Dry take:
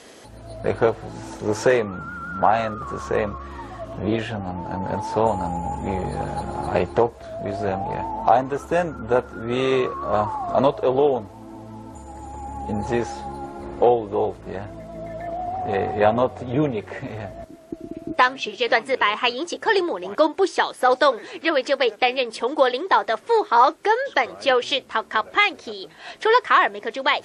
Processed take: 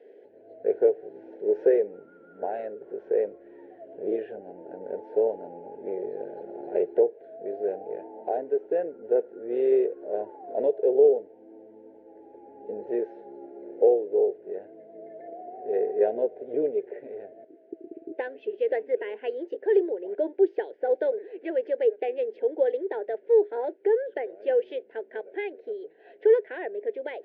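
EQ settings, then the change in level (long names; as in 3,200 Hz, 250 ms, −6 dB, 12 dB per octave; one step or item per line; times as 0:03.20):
high-pass with resonance 420 Hz, resonance Q 4.9
Butterworth band-reject 1,200 Hz, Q 0.64
transistor ladder low-pass 1,600 Hz, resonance 70%
0.0 dB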